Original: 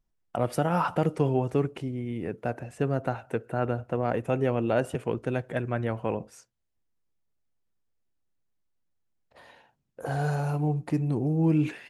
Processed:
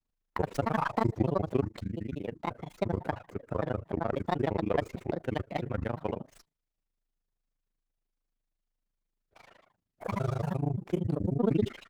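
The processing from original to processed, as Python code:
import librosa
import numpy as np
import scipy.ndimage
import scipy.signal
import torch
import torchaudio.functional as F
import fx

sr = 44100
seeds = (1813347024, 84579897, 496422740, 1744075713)

y = fx.granulator(x, sr, seeds[0], grain_ms=41.0, per_s=26.0, spray_ms=17.0, spread_st=7)
y = fx.running_max(y, sr, window=3)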